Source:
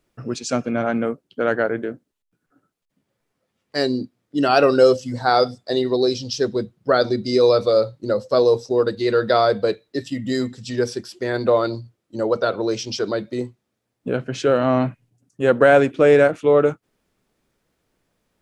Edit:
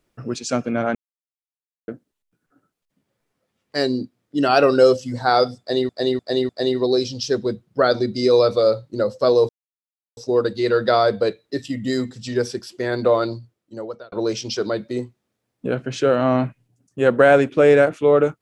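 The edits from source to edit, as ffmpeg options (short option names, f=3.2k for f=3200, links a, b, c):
-filter_complex "[0:a]asplit=8[a][b][c][d][e][f][g][h];[a]atrim=end=0.95,asetpts=PTS-STARTPTS,afade=t=out:st=0.946:d=0.004:c=hsin[i];[b]atrim=start=0.95:end=1.88,asetpts=PTS-STARTPTS,volume=0[j];[c]atrim=start=1.88:end=5.892,asetpts=PTS-STARTPTS,afade=t=in:d=0.004:c=hsin[k];[d]atrim=start=5.588:end=5.892[l];[e]atrim=start=5.588:end=5.892[m];[f]atrim=start=5.588:end=8.59,asetpts=PTS-STARTPTS,afade=t=out:st=2.998:d=0.004:c=hsin,apad=pad_dur=0.68[n];[g]atrim=start=8.59:end=12.54,asetpts=PTS-STARTPTS,afade=t=in:d=0.004:c=hsin,afade=t=out:st=3.1:d=0.85[o];[h]atrim=start=12.54,asetpts=PTS-STARTPTS,afade=t=in:d=0.004:c=hsin[p];[i][j][k]concat=n=3:v=0:a=1[q];[q][l]acrossfade=d=0.004:c1=hsin:c2=hsin[r];[r][m]acrossfade=d=0.004:c1=hsin:c2=hsin[s];[n][o][p]concat=n=3:v=0:a=1[t];[s][t]acrossfade=d=0.004:c1=hsin:c2=hsin"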